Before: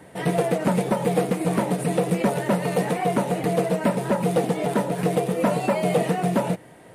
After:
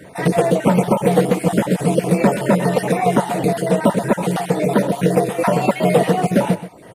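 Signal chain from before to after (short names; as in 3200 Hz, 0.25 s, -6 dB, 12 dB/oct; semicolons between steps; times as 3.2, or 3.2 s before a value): random spectral dropouts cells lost 33%; echo 0.127 s -13.5 dB; gain +7 dB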